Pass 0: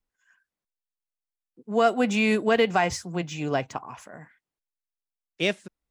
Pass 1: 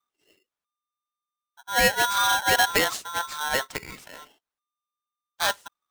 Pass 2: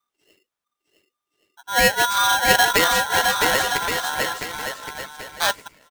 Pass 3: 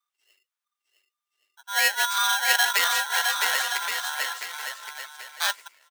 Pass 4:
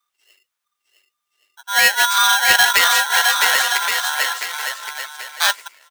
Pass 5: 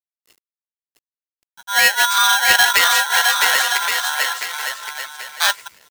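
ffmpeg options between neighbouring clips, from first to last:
-af "aeval=exprs='val(0)*sgn(sin(2*PI*1200*n/s))':c=same"
-af "aecho=1:1:660|1122|1445|1672|1830:0.631|0.398|0.251|0.158|0.1,volume=3.5dB"
-af "highpass=1.1k,volume=-3dB"
-af "aeval=exprs='0.891*sin(PI/2*1.78*val(0)/0.891)':c=same"
-af "acrusher=bits=7:mix=0:aa=0.000001"

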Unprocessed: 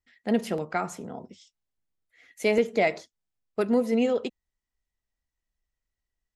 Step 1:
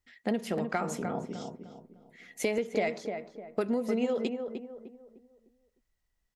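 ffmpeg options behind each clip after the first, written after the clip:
-filter_complex "[0:a]acompressor=threshold=-31dB:ratio=6,asplit=2[a][b];[b]adelay=303,lowpass=f=1.3k:p=1,volume=-5.5dB,asplit=2[c][d];[d]adelay=303,lowpass=f=1.3k:p=1,volume=0.38,asplit=2[e][f];[f]adelay=303,lowpass=f=1.3k:p=1,volume=0.38,asplit=2[g][h];[h]adelay=303,lowpass=f=1.3k:p=1,volume=0.38,asplit=2[i][j];[j]adelay=303,lowpass=f=1.3k:p=1,volume=0.38[k];[c][e][g][i][k]amix=inputs=5:normalize=0[l];[a][l]amix=inputs=2:normalize=0,volume=4dB"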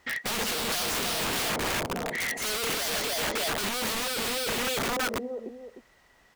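-filter_complex "[0:a]asplit=2[a][b];[b]highpass=f=720:p=1,volume=40dB,asoftclip=type=tanh:threshold=-14.5dB[c];[a][c]amix=inputs=2:normalize=0,lowpass=f=1.2k:p=1,volume=-6dB,aeval=exprs='(mod(16.8*val(0)+1,2)-1)/16.8':c=same"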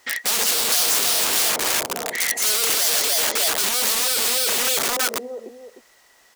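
-af "bass=f=250:g=-13,treble=f=4k:g=10,volume=4dB"

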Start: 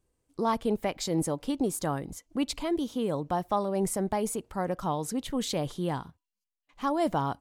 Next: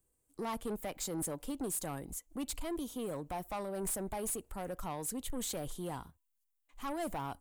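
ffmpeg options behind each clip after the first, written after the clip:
-filter_complex "[0:a]asubboost=boost=5.5:cutoff=55,acrossover=split=280|2000[a][b][c];[c]aexciter=amount=3.2:drive=7.1:freq=7.1k[d];[a][b][d]amix=inputs=3:normalize=0,asoftclip=type=tanh:threshold=-26.5dB,volume=-6dB"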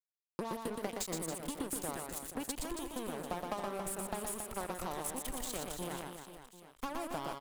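-filter_complex "[0:a]acompressor=threshold=-39dB:ratio=6,acrusher=bits=5:mix=0:aa=0.5,asplit=2[a][b];[b]aecho=0:1:120|276|478.8|742.4|1085:0.631|0.398|0.251|0.158|0.1[c];[a][c]amix=inputs=2:normalize=0,volume=6.5dB"

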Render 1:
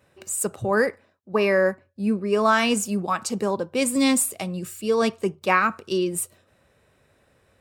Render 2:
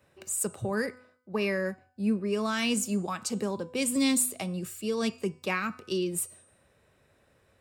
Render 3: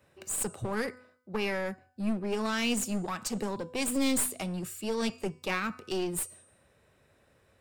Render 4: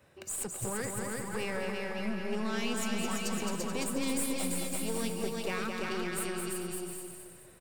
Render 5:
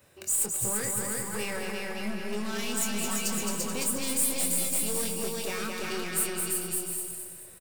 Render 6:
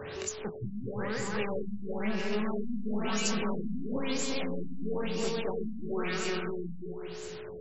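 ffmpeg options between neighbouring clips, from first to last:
-filter_complex "[0:a]bandreject=f=250.8:t=h:w=4,bandreject=f=501.6:t=h:w=4,bandreject=f=752.4:t=h:w=4,bandreject=f=1.0032k:t=h:w=4,bandreject=f=1.254k:t=h:w=4,bandreject=f=1.5048k:t=h:w=4,bandreject=f=1.7556k:t=h:w=4,bandreject=f=2.0064k:t=h:w=4,bandreject=f=2.2572k:t=h:w=4,bandreject=f=2.508k:t=h:w=4,bandreject=f=2.7588k:t=h:w=4,bandreject=f=3.0096k:t=h:w=4,bandreject=f=3.2604k:t=h:w=4,bandreject=f=3.5112k:t=h:w=4,bandreject=f=3.762k:t=h:w=4,bandreject=f=4.0128k:t=h:w=4,bandreject=f=4.2636k:t=h:w=4,bandreject=f=4.5144k:t=h:w=4,bandreject=f=4.7652k:t=h:w=4,bandreject=f=5.016k:t=h:w=4,bandreject=f=5.2668k:t=h:w=4,bandreject=f=5.5176k:t=h:w=4,bandreject=f=5.7684k:t=h:w=4,bandreject=f=6.0192k:t=h:w=4,bandreject=f=6.27k:t=h:w=4,bandreject=f=6.5208k:t=h:w=4,bandreject=f=6.7716k:t=h:w=4,bandreject=f=7.0224k:t=h:w=4,bandreject=f=7.2732k:t=h:w=4,bandreject=f=7.524k:t=h:w=4,bandreject=f=7.7748k:t=h:w=4,bandreject=f=8.0256k:t=h:w=4,bandreject=f=8.2764k:t=h:w=4,bandreject=f=8.5272k:t=h:w=4,bandreject=f=8.778k:t=h:w=4,bandreject=f=9.0288k:t=h:w=4,bandreject=f=9.2796k:t=h:w=4,bandreject=f=9.5304k:t=h:w=4,acrossover=split=320|2100[a][b][c];[b]acompressor=threshold=-30dB:ratio=6[d];[a][d][c]amix=inputs=3:normalize=0,volume=-3.5dB"
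-af "aeval=exprs='clip(val(0),-1,0.0251)':c=same"
-filter_complex "[0:a]asplit=2[a][b];[b]aecho=0:1:340|561|704.6|798|858.7:0.631|0.398|0.251|0.158|0.1[c];[a][c]amix=inputs=2:normalize=0,acompressor=threshold=-48dB:ratio=1.5,asplit=2[d][e];[e]aecho=0:1:215|430|645|860|1075|1290:0.562|0.259|0.119|0.0547|0.0252|0.0116[f];[d][f]amix=inputs=2:normalize=0,volume=2.5dB"
-filter_complex "[0:a]asoftclip=type=hard:threshold=-27dB,crystalizer=i=2:c=0,asplit=2[a][b];[b]adelay=24,volume=-7dB[c];[a][c]amix=inputs=2:normalize=0"
-af "aeval=exprs='val(0)+0.5*0.0168*sgn(val(0))':c=same,aeval=exprs='val(0)+0.00891*sin(2*PI*430*n/s)':c=same,afftfilt=real='re*lt(b*sr/1024,280*pow(7900/280,0.5+0.5*sin(2*PI*1*pts/sr)))':imag='im*lt(b*sr/1024,280*pow(7900/280,0.5+0.5*sin(2*PI*1*pts/sr)))':win_size=1024:overlap=0.75"

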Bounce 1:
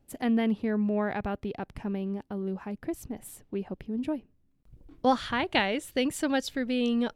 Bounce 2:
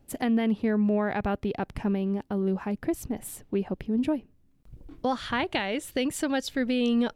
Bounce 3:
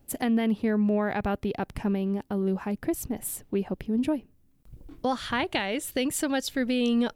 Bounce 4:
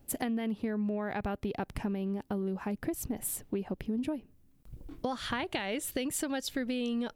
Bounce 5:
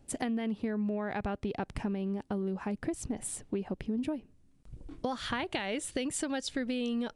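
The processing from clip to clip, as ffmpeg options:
-af "alimiter=limit=-22.5dB:level=0:latency=1:release=472,volume=6dB"
-af "highshelf=f=8.5k:g=10"
-af "acompressor=threshold=-30dB:ratio=6"
-af "aresample=22050,aresample=44100"

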